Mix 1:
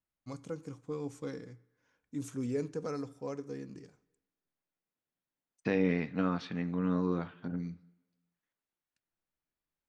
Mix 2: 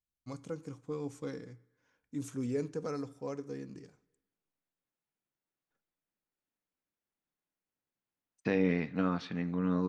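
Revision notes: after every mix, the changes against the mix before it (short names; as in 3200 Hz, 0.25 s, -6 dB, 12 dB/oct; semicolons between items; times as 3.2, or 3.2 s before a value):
second voice: entry +2.80 s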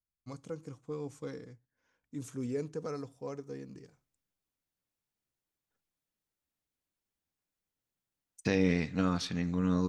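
first voice: send off; second voice: remove BPF 160–2500 Hz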